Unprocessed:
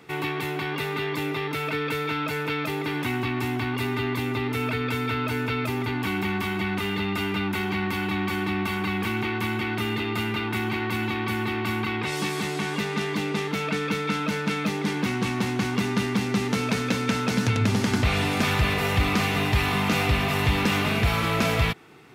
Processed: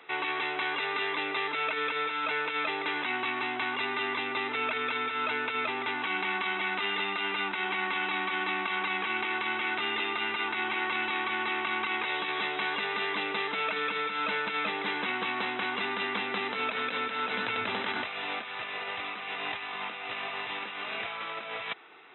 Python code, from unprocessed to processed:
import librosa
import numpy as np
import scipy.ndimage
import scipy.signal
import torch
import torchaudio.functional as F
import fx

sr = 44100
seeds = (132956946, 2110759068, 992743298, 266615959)

y = scipy.signal.sosfilt(scipy.signal.butter(2, 610.0, 'highpass', fs=sr, output='sos'), x)
y = fx.over_compress(y, sr, threshold_db=-31.0, ratio=-0.5)
y = fx.brickwall_lowpass(y, sr, high_hz=4000.0)